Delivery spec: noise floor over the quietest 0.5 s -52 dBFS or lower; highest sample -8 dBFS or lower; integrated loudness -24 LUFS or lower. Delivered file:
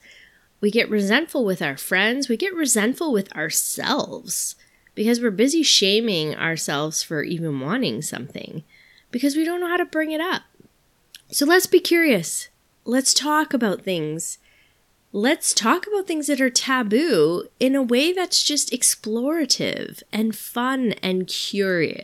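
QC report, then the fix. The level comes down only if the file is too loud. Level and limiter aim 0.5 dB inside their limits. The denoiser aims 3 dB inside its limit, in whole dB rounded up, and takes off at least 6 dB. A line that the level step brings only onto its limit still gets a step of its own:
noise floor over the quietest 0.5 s -61 dBFS: OK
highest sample -5.0 dBFS: fail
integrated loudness -20.5 LUFS: fail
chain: gain -4 dB

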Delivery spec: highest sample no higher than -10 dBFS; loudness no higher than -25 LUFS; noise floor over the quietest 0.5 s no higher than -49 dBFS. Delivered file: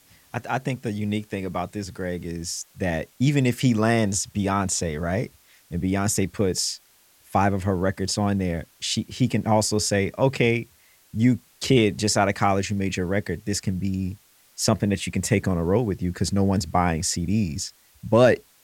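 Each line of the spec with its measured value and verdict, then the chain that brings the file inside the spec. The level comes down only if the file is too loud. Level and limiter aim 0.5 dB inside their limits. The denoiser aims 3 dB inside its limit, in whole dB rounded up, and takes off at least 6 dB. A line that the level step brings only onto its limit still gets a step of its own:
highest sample -5.5 dBFS: fail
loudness -24.0 LUFS: fail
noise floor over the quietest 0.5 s -57 dBFS: OK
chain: gain -1.5 dB; limiter -10.5 dBFS

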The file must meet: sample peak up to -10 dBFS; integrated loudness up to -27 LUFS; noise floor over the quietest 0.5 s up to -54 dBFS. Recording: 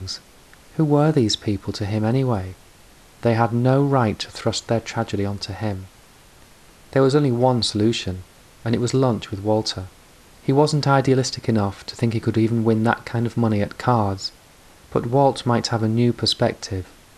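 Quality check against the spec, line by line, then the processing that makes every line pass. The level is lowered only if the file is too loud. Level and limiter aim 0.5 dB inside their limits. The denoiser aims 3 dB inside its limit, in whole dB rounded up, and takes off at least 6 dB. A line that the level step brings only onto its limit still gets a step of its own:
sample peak -3.5 dBFS: fail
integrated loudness -21.0 LUFS: fail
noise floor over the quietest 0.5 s -49 dBFS: fail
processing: gain -6.5 dB; limiter -10.5 dBFS

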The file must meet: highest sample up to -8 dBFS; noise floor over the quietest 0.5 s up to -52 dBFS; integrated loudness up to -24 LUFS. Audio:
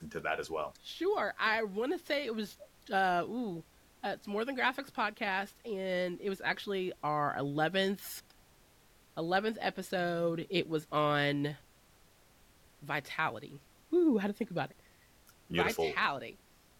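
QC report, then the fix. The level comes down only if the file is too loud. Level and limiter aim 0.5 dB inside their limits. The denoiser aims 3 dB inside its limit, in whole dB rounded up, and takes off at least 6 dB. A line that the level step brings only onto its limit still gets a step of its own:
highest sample -16.0 dBFS: OK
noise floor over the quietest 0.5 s -64 dBFS: OK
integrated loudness -34.0 LUFS: OK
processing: none

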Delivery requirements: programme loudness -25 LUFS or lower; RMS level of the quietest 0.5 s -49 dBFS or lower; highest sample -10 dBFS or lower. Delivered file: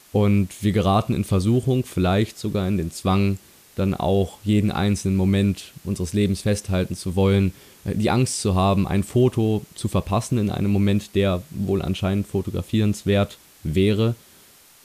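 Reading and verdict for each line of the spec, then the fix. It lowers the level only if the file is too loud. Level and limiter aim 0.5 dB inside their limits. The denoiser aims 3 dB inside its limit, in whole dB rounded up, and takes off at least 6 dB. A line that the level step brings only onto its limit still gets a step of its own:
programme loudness -22.0 LUFS: fail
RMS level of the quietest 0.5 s -51 dBFS: OK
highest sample -7.5 dBFS: fail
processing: gain -3.5 dB

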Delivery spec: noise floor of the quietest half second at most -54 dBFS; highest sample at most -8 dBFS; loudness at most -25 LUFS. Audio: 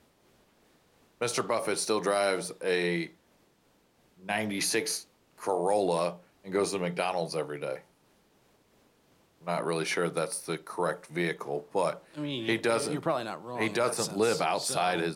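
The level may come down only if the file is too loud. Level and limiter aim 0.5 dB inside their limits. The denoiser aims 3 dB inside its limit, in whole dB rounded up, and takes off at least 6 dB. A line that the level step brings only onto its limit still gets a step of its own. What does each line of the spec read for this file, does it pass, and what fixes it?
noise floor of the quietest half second -67 dBFS: OK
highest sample -15.5 dBFS: OK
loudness -30.5 LUFS: OK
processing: none

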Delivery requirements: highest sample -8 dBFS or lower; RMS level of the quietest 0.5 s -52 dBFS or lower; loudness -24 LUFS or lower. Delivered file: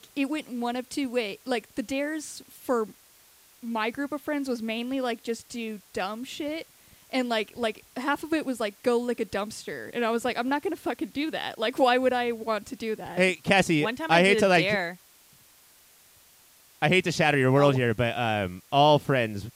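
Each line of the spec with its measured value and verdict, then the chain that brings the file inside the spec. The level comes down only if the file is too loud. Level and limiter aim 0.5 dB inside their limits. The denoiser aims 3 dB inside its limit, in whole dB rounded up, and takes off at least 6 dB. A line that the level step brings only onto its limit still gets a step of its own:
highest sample -7.0 dBFS: fail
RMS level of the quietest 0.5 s -57 dBFS: OK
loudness -26.5 LUFS: OK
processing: limiter -8.5 dBFS

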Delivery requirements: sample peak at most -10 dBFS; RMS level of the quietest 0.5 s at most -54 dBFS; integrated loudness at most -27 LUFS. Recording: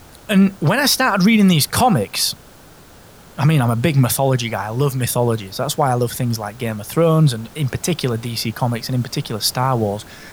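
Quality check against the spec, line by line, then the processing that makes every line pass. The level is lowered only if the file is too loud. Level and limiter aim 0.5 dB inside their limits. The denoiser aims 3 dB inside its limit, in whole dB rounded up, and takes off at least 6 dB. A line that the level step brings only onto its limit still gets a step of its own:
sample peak -4.0 dBFS: fail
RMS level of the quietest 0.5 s -43 dBFS: fail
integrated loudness -17.5 LUFS: fail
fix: denoiser 6 dB, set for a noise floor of -43 dBFS; gain -10 dB

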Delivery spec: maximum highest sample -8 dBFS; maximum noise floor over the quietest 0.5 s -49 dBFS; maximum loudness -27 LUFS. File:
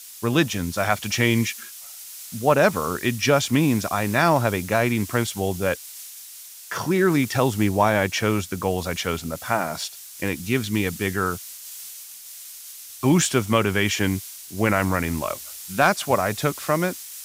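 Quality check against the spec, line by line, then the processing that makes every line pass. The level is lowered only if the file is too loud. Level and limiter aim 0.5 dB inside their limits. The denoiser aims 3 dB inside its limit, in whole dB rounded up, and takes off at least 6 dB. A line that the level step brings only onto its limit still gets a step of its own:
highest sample -5.0 dBFS: fail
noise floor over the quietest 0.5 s -42 dBFS: fail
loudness -22.5 LUFS: fail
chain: denoiser 6 dB, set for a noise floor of -42 dBFS; gain -5 dB

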